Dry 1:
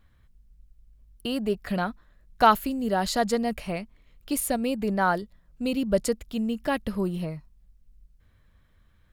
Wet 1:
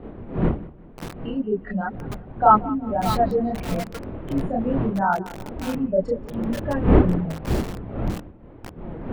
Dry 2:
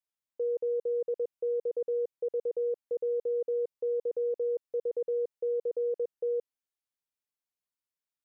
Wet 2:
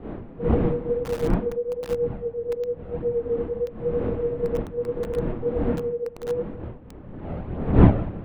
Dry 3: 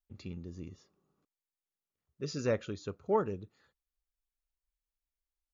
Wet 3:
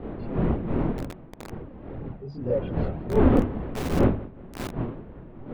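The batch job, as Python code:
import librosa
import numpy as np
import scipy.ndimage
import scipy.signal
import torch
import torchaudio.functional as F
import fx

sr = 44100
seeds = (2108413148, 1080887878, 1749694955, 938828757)

p1 = fx.spec_expand(x, sr, power=2.1)
p2 = fx.dmg_wind(p1, sr, seeds[0], corner_hz=290.0, level_db=-29.0)
p3 = scipy.signal.sosfilt(scipy.signal.butter(4, 3300.0, 'lowpass', fs=sr, output='sos'), p2)
p4 = fx.level_steps(p3, sr, step_db=10)
p5 = p3 + F.gain(torch.from_numpy(p4), -2.0).numpy()
p6 = fx.chorus_voices(p5, sr, voices=2, hz=0.98, base_ms=29, depth_ms=4.3, mix_pct=60)
p7 = fx.hum_notches(p6, sr, base_hz=50, count=6)
p8 = p7 + fx.echo_feedback(p7, sr, ms=182, feedback_pct=35, wet_db=-19.5, dry=0)
p9 = fx.echo_crushed(p8, sr, ms=595, feedback_pct=35, bits=4, wet_db=-10.5)
y = F.gain(torch.from_numpy(p9), 2.0).numpy()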